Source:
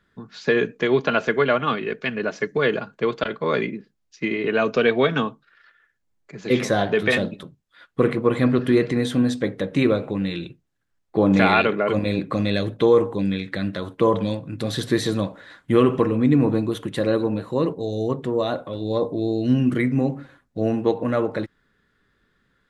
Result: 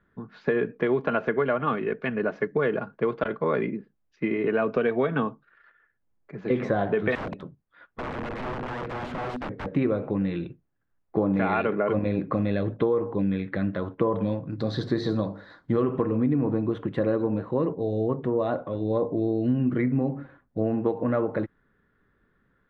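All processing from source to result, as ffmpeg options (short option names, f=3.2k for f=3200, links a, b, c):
-filter_complex "[0:a]asettb=1/sr,asplit=3[a][b][c];[a]atrim=end=7.154[d];[b]atrim=start=7.15:end=9.66,asetpts=PTS-STARTPTS,afade=t=in:d=0.004:c=qsin,afade=t=out:st=2.506:d=0.004:c=qsin,acompressor=threshold=-22dB:ratio=20:attack=3.2:release=140:knee=1:detection=peak,aeval=exprs='(mod(18.8*val(0)+1,2)-1)/18.8':c=same[e];[c]atrim=start=9.656[f];[d][e]acrossfade=d=0.004:c1=hsin:c2=qsin[g];[g][f]acrossfade=d=0.004:c1=qsin:c2=hsin,asettb=1/sr,asplit=3[h][i][j];[h]atrim=end=14.504[k];[i]atrim=start=14.5:end=15.83,asetpts=PTS-STARTPTS,afade=t=in:d=0.004:c=qsin,afade=t=out:st=1.326:d=0.004:c=qsin,bandreject=f=50:t=h:w=6,bandreject=f=100:t=h:w=6,bandreject=f=150:t=h:w=6,bandreject=f=200:t=h:w=6,bandreject=f=250:t=h:w=6,bandreject=f=300:t=h:w=6,bandreject=f=350:t=h:w=6,bandreject=f=400:t=h:w=6,bandreject=f=450:t=h:w=6,acrossover=split=5700[l][m];[m]acompressor=threshold=-46dB:ratio=4:attack=1:release=60[n];[l][n]amix=inputs=2:normalize=0,highshelf=f=3.5k:t=q:w=3:g=8[o];[j]atrim=start=15.826[p];[k][o]acrossfade=d=0.004:c1=hsin:c2=qsin[q];[q][p]acrossfade=d=0.004:c1=qsin:c2=hsin,lowpass=1.6k,acompressor=threshold=-20dB:ratio=6"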